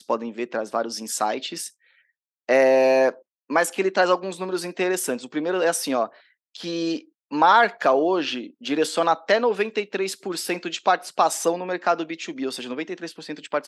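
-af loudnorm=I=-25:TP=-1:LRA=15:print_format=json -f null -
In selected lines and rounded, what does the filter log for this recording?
"input_i" : "-23.4",
"input_tp" : "-4.4",
"input_lra" : "3.8",
"input_thresh" : "-33.8",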